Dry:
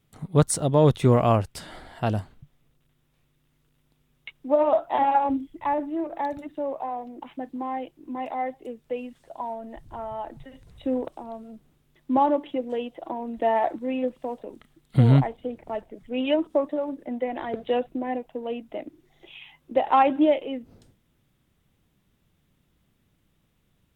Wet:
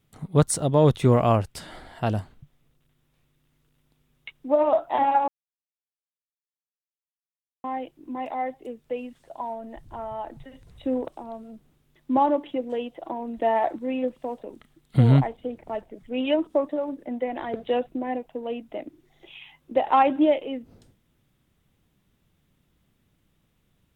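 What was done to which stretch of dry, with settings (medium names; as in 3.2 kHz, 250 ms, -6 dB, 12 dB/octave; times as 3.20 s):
5.28–7.64 s: mute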